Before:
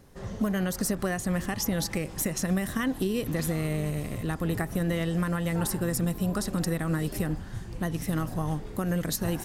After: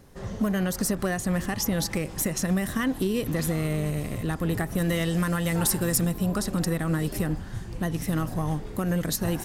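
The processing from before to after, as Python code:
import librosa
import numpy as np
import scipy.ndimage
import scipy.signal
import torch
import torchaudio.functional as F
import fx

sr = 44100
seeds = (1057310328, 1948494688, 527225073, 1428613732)

p1 = fx.high_shelf(x, sr, hz=2400.0, db=7.0, at=(4.78, 6.07))
p2 = 10.0 ** (-21.5 / 20.0) * (np.abs((p1 / 10.0 ** (-21.5 / 20.0) + 3.0) % 4.0 - 2.0) - 1.0)
y = p1 + F.gain(torch.from_numpy(p2), -10.5).numpy()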